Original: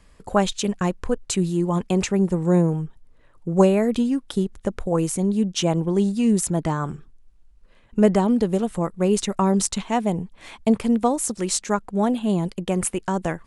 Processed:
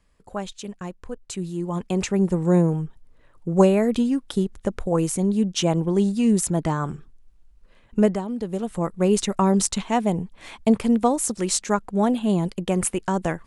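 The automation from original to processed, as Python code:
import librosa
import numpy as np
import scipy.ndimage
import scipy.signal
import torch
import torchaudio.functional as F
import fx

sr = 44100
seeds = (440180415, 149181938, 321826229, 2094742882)

y = fx.gain(x, sr, db=fx.line((1.07, -11.0), (2.26, 0.0), (8.0, 0.0), (8.25, -11.0), (8.9, 0.5)))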